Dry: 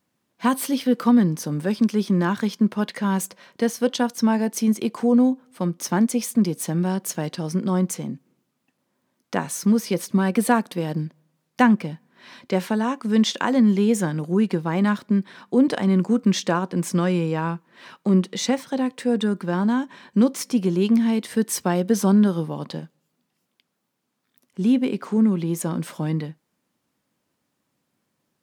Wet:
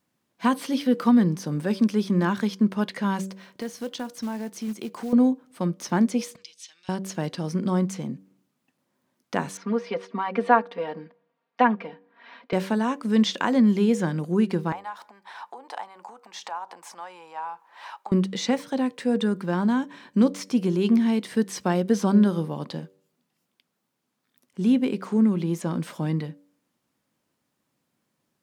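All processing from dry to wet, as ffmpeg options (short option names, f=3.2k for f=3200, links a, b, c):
-filter_complex "[0:a]asettb=1/sr,asplit=3[a][b][c];[a]atrim=end=3.214[d];[b]atrim=start=3.21:end=5.13,asetpts=PTS-STARTPTS,afade=t=in:d=0.004:c=qsin,afade=t=out:st=1.916:d=0.004:c=qsin,acrusher=bits=5:mode=log:mix=0:aa=0.000001,acompressor=threshold=-33dB:ratio=2:attack=3.2:release=140:knee=1:detection=peak[e];[c]atrim=start=5.126[f];[d][e]acrossfade=d=0.004:c1=hsin:c2=qsin[g];[g][f]acrossfade=d=0.004:c1=qsin:c2=hsin,asettb=1/sr,asplit=3[h][i][j];[h]atrim=end=6.364[k];[i]atrim=start=6.36:end=6.89,asetpts=PTS-STARTPTS,afade=t=in:d=0.004:c=qsin,afade=t=out:st=0.526:d=0.004:c=qsin,asuperpass=centerf=4200:order=4:qfactor=1.2,equalizer=f=4.6k:w=7.2:g=-4.5[l];[j]atrim=start=6.886[m];[k][l]acrossfade=d=0.004:c1=hsin:c2=qsin[n];[n][m]acrossfade=d=0.004:c1=qsin:c2=hsin,asettb=1/sr,asplit=3[o][p][q];[o]atrim=end=9.574[r];[p]atrim=start=9.57:end=12.53,asetpts=PTS-STARTPTS,afade=t=in:d=0.004:c=qsin,afade=t=out:st=2.956:d=0.004:c=qsin,highpass=490,lowpass=3.3k,aemphasis=mode=reproduction:type=75fm,aecho=1:1:4.3:0.99,atrim=end_sample=130536[s];[q]atrim=start=12.526[t];[r][s]acrossfade=d=0.004:c1=hsin:c2=qsin[u];[u][t]acrossfade=d=0.004:c1=qsin:c2=hsin,asettb=1/sr,asplit=3[v][w][x];[v]atrim=end=14.724[y];[w]atrim=start=14.72:end=18.12,asetpts=PTS-STARTPTS,afade=t=in:d=0.004:c=qsin,afade=t=out:st=3.396:d=0.004:c=qsin,acompressor=threshold=-33dB:ratio=5:attack=3.2:release=140:knee=1:detection=peak,highpass=f=840:t=q:w=6.1[z];[x]atrim=start=18.116[aa];[y][z]acrossfade=d=0.004:c1=hsin:c2=qsin[ab];[ab][aa]acrossfade=d=0.004:c1=qsin:c2=hsin,acrossover=split=6000[ac][ad];[ad]acompressor=threshold=-45dB:ratio=4:attack=1:release=60[ae];[ac][ae]amix=inputs=2:normalize=0,bandreject=f=95.84:t=h:w=4,bandreject=f=191.68:t=h:w=4,bandreject=f=287.52:t=h:w=4,bandreject=f=383.36:t=h:w=4,bandreject=f=479.2:t=h:w=4,bandreject=f=575.04:t=h:w=4,volume=-1.5dB"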